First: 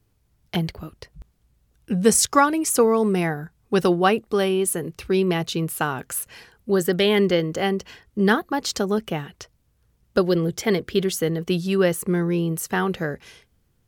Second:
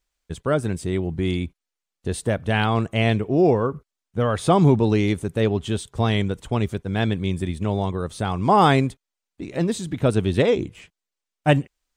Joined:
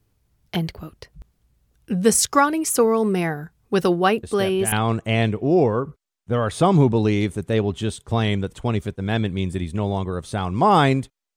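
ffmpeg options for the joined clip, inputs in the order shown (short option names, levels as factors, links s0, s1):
-filter_complex "[1:a]asplit=2[s0][s1];[0:a]apad=whole_dur=11.36,atrim=end=11.36,atrim=end=4.722[s2];[s1]atrim=start=2.588:end=9.23[s3];[s0]atrim=start=2.1:end=2.59,asetpts=PTS-STARTPTS,volume=0.376,afade=t=in:d=0.004:c=hsin,afade=t=out:st=0.486:d=0.004:c=hsin,adelay=4230[s4];[s2][s3]acrossfade=d=0.004:c1=hsin:c2=hsin[s5];[s5][s4]amix=inputs=2:normalize=0"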